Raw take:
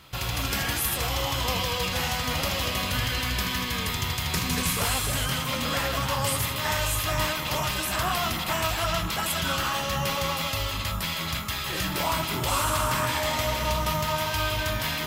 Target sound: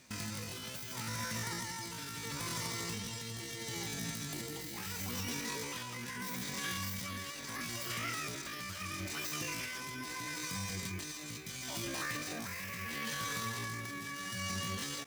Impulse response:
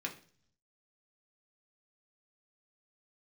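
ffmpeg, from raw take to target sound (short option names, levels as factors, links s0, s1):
-filter_complex "[0:a]asplit=2[s0][s1];[s1]adelay=122.4,volume=0.0398,highshelf=f=4000:g=-2.76[s2];[s0][s2]amix=inputs=2:normalize=0,alimiter=limit=0.112:level=0:latency=1:release=69,tremolo=f=0.75:d=0.45,asetrate=80880,aresample=44100,atempo=0.545254,volume=0.376"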